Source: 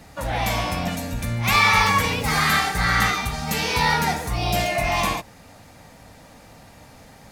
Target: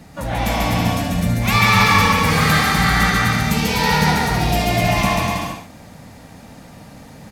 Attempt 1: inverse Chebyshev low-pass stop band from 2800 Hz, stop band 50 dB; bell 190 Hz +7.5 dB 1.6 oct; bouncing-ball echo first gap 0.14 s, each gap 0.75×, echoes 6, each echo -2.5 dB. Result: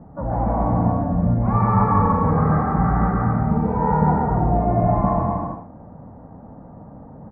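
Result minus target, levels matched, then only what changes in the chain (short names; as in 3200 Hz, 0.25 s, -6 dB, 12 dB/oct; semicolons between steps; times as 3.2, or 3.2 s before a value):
2000 Hz band -17.0 dB
remove: inverse Chebyshev low-pass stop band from 2800 Hz, stop band 50 dB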